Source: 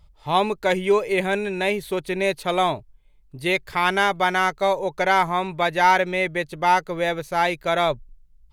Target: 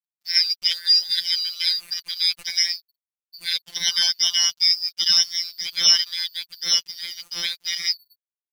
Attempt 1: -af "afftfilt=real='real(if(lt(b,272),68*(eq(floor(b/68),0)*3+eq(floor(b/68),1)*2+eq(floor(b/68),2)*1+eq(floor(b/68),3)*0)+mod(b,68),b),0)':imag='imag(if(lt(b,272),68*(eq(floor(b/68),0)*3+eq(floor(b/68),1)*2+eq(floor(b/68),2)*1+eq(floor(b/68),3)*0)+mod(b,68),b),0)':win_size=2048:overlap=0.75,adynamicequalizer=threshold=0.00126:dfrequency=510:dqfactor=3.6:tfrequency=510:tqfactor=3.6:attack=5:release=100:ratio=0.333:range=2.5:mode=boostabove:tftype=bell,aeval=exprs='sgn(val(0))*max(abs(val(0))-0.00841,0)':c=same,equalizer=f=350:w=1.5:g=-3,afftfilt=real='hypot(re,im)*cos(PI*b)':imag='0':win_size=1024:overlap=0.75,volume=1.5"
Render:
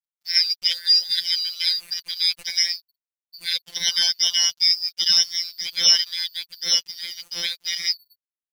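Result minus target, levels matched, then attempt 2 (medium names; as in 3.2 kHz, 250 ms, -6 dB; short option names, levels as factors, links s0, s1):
500 Hz band +3.0 dB
-af "afftfilt=real='real(if(lt(b,272),68*(eq(floor(b/68),0)*3+eq(floor(b/68),1)*2+eq(floor(b/68),2)*1+eq(floor(b/68),3)*0)+mod(b,68),b),0)':imag='imag(if(lt(b,272),68*(eq(floor(b/68),0)*3+eq(floor(b/68),1)*2+eq(floor(b/68),2)*1+eq(floor(b/68),3)*0)+mod(b,68),b),0)':win_size=2048:overlap=0.75,adynamicequalizer=threshold=0.00126:dfrequency=1200:dqfactor=3.6:tfrequency=1200:tqfactor=3.6:attack=5:release=100:ratio=0.333:range=2.5:mode=boostabove:tftype=bell,aeval=exprs='sgn(val(0))*max(abs(val(0))-0.00841,0)':c=same,equalizer=f=350:w=1.5:g=-3,afftfilt=real='hypot(re,im)*cos(PI*b)':imag='0':win_size=1024:overlap=0.75,volume=1.5"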